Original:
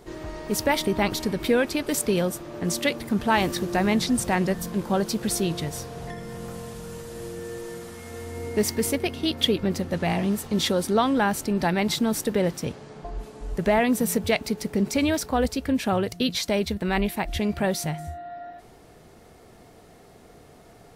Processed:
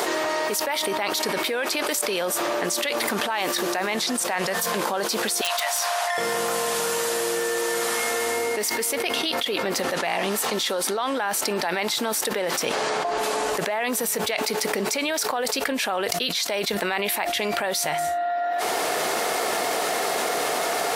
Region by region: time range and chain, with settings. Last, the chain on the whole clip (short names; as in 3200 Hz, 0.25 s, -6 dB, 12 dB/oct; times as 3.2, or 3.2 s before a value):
4.31–4.8 HPF 61 Hz + bell 310 Hz -13 dB 0.34 oct
5.41–6.18 elliptic high-pass 630 Hz + wrapped overs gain 24.5 dB
whole clip: HPF 650 Hz 12 dB/oct; fast leveller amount 100%; gain -6 dB